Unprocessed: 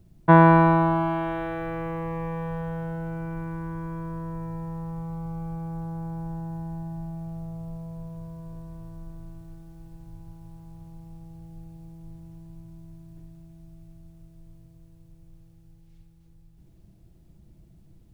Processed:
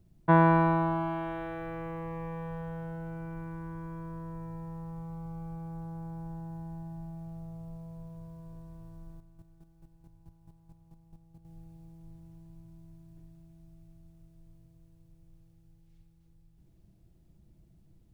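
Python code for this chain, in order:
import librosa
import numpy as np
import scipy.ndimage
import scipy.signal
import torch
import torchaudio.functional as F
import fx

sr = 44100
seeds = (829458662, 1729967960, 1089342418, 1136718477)

y = fx.chopper(x, sr, hz=4.6, depth_pct=65, duty_pct=15, at=(9.17, 11.45))
y = y * 10.0 ** (-7.0 / 20.0)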